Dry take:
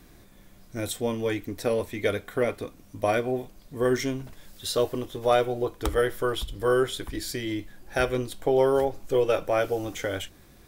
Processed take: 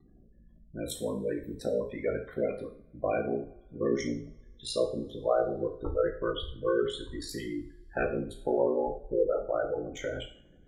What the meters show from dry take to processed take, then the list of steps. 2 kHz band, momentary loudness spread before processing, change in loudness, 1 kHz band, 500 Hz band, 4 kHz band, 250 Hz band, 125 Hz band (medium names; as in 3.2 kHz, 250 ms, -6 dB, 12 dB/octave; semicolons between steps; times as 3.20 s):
-8.0 dB, 12 LU, -5.0 dB, -7.5 dB, -4.5 dB, -7.0 dB, -4.0 dB, -7.5 dB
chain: spectral gate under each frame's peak -15 dB strong; ring modulator 28 Hz; two-slope reverb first 0.44 s, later 1.9 s, from -27 dB, DRR 1.5 dB; trim -3.5 dB